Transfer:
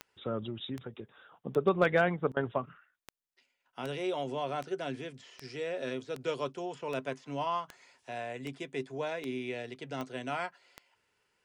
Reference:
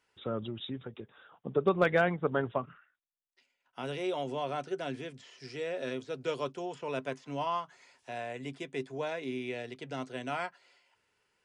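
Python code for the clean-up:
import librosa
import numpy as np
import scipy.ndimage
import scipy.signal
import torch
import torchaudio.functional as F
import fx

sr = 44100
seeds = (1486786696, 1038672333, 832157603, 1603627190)

y = fx.fix_declick_ar(x, sr, threshold=10.0)
y = fx.fix_interpolate(y, sr, at_s=(2.32,), length_ms=45.0)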